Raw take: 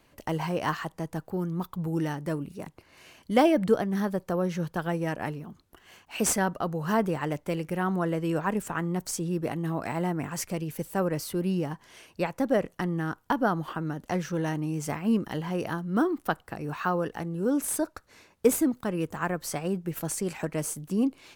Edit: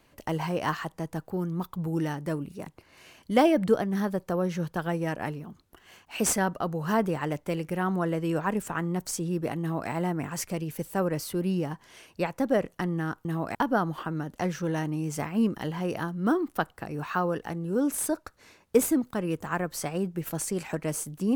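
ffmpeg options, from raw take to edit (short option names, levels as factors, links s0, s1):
-filter_complex "[0:a]asplit=3[s0][s1][s2];[s0]atrim=end=13.252[s3];[s1]atrim=start=9.598:end=9.902[s4];[s2]atrim=start=13.248[s5];[s3][s4]acrossfade=d=0.004:c1=hsin:c2=hsin[s6];[s6][s5]acrossfade=d=0.004:c1=hsin:c2=hsin"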